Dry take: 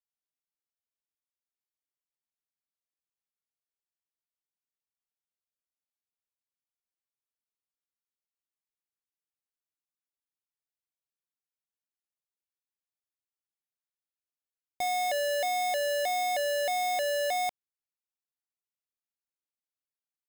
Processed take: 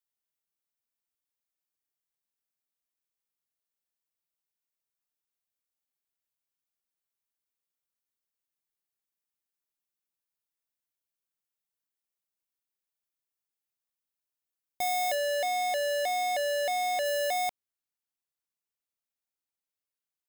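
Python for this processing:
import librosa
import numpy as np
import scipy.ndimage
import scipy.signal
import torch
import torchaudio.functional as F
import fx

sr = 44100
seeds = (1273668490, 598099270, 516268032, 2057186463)

y = fx.high_shelf(x, sr, hz=11000.0, db=fx.steps((0.0, 8.0), (15.14, -3.5), (17.04, 3.5)))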